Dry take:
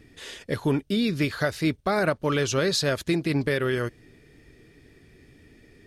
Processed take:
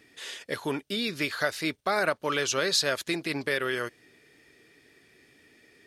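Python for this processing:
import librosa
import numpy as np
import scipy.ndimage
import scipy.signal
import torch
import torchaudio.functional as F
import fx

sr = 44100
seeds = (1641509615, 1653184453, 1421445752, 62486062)

y = fx.highpass(x, sr, hz=800.0, slope=6)
y = y * 10.0 ** (1.5 / 20.0)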